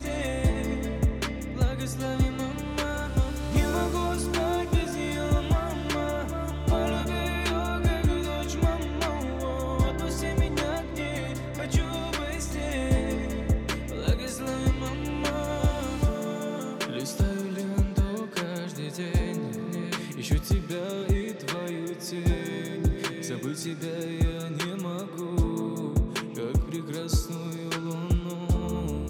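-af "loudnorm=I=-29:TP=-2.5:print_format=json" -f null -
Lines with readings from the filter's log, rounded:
"input_i" : "-29.2",
"input_tp" : "-11.7",
"input_lra" : "2.4",
"input_thresh" : "-39.2",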